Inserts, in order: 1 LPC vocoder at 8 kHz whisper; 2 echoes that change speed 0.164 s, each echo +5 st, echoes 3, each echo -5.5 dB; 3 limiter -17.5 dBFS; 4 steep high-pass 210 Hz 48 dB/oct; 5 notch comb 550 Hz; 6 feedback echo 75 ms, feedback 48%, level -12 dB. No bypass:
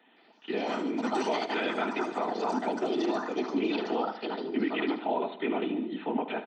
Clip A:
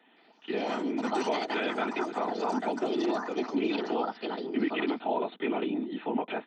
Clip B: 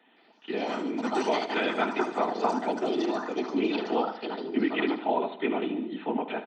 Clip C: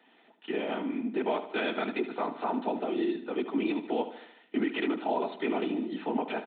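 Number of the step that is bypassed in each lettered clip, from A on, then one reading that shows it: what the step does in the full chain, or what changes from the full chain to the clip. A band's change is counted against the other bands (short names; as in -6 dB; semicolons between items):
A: 6, echo-to-direct -11.0 dB to none; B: 3, crest factor change +3.0 dB; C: 2, 4 kHz band -2.0 dB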